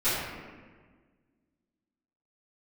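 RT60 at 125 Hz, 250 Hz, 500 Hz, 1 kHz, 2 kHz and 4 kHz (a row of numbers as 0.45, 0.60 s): 1.9, 2.1, 1.7, 1.4, 1.4, 0.95 s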